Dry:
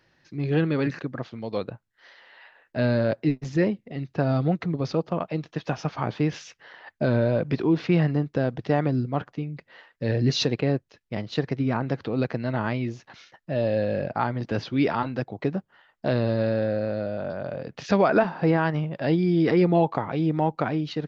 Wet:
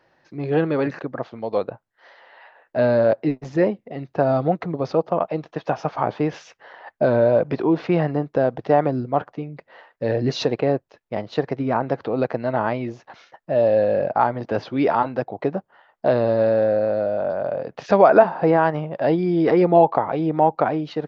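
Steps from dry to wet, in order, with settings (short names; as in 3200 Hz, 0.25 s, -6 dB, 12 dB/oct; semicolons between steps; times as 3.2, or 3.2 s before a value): bell 710 Hz +14 dB 2.3 oct; gain -4.5 dB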